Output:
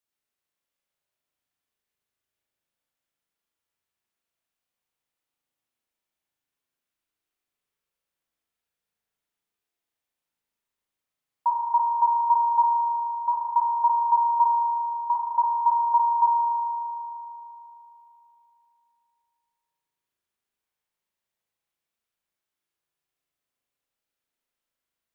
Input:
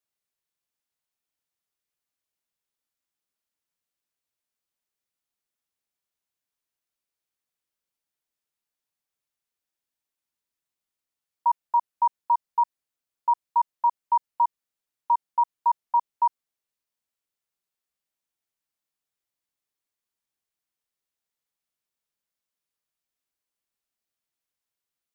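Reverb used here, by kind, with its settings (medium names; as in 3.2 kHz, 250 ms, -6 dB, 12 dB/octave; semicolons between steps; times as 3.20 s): spring tank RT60 3.2 s, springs 37 ms, chirp 45 ms, DRR -3 dB; trim -1 dB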